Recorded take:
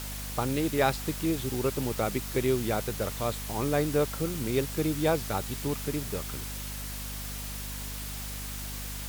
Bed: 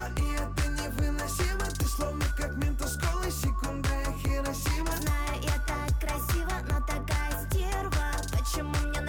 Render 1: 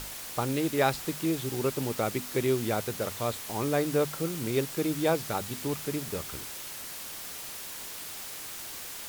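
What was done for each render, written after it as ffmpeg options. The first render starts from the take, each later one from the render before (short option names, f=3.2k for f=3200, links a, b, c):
-af "bandreject=f=50:t=h:w=6,bandreject=f=100:t=h:w=6,bandreject=f=150:t=h:w=6,bandreject=f=200:t=h:w=6,bandreject=f=250:t=h:w=6"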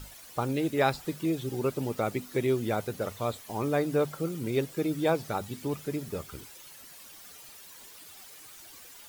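-af "afftdn=nr=12:nf=-41"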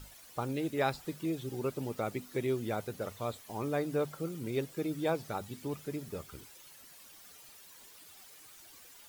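-af "volume=-5.5dB"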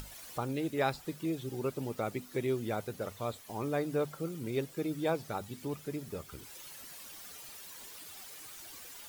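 -af "acompressor=mode=upward:threshold=-40dB:ratio=2.5"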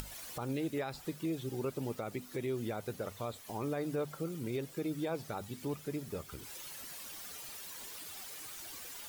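-af "alimiter=level_in=3.5dB:limit=-24dB:level=0:latency=1:release=81,volume=-3.5dB,acompressor=mode=upward:threshold=-41dB:ratio=2.5"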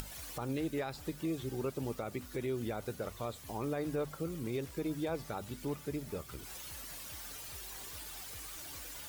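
-filter_complex "[1:a]volume=-26.5dB[a];[0:a][a]amix=inputs=2:normalize=0"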